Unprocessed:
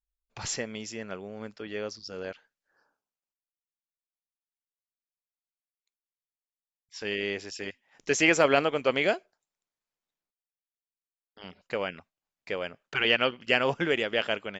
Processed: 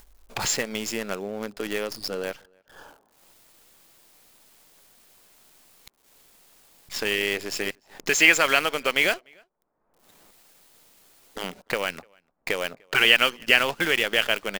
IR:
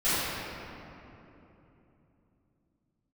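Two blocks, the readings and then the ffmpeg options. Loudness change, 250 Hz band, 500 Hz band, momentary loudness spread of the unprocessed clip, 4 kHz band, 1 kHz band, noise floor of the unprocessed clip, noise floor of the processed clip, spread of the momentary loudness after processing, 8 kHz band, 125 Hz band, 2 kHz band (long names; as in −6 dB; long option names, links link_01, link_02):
+5.0 dB, 0.0 dB, 0.0 dB, 17 LU, +8.0 dB, +3.5 dB, below −85 dBFS, −71 dBFS, 17 LU, +7.5 dB, −1.0 dB, +7.5 dB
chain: -filter_complex "[0:a]asplit=2[link_01][link_02];[link_02]acompressor=mode=upward:threshold=-26dB:ratio=2.5,volume=1dB[link_03];[link_01][link_03]amix=inputs=2:normalize=0,equalizer=frequency=80:width=0.78:gain=-9.5,bandreject=frequency=5800:width=6.8,acrossover=split=1200[link_04][link_05];[link_04]acompressor=threshold=-28dB:ratio=6[link_06];[link_05]acrusher=bits=6:dc=4:mix=0:aa=0.000001[link_07];[link_06][link_07]amix=inputs=2:normalize=0,asplit=2[link_08][link_09];[link_09]adelay=297.4,volume=-30dB,highshelf=frequency=4000:gain=-6.69[link_10];[link_08][link_10]amix=inputs=2:normalize=0,volume=1.5dB"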